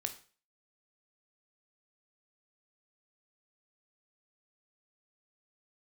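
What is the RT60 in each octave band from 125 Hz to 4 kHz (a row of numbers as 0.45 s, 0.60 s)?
0.45 s, 0.40 s, 0.40 s, 0.40 s, 0.40 s, 0.40 s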